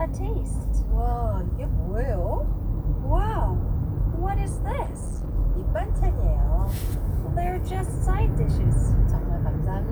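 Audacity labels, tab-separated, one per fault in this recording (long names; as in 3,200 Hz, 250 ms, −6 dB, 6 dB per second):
4.820000	5.350000	clipping −26 dBFS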